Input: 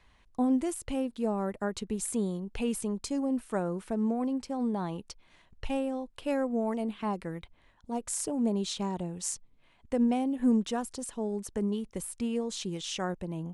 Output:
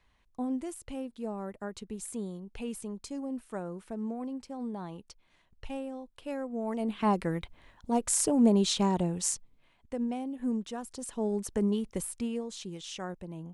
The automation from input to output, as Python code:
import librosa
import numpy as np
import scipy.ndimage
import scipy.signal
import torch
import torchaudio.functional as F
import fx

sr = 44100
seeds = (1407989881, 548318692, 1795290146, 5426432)

y = fx.gain(x, sr, db=fx.line((6.51, -6.5), (7.08, 6.0), (9.11, 6.0), (9.98, -6.5), (10.77, -6.5), (11.26, 2.5), (12.0, 2.5), (12.51, -5.5)))